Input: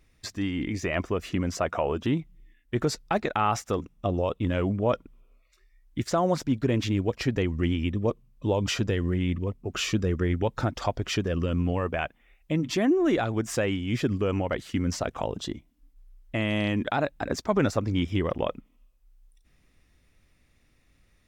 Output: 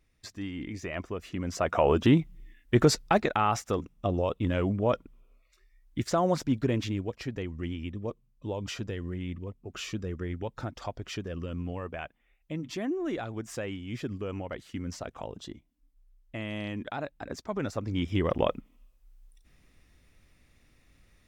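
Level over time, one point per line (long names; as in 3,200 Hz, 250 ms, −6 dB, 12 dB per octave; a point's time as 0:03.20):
0:01.34 −7.5 dB
0:01.89 +5 dB
0:02.93 +5 dB
0:03.45 −1.5 dB
0:06.61 −1.5 dB
0:07.20 −9 dB
0:17.63 −9 dB
0:18.39 +2 dB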